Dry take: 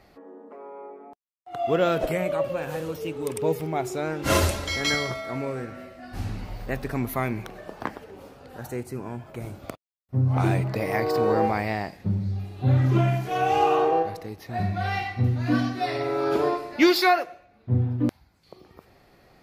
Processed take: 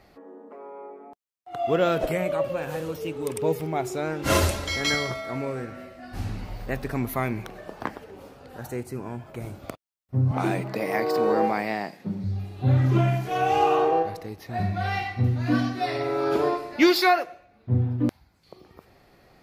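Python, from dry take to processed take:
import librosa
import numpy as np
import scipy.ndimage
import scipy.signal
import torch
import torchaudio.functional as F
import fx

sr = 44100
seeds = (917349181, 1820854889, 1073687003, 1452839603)

y = fx.highpass(x, sr, hz=160.0, slope=24, at=(10.31, 12.24))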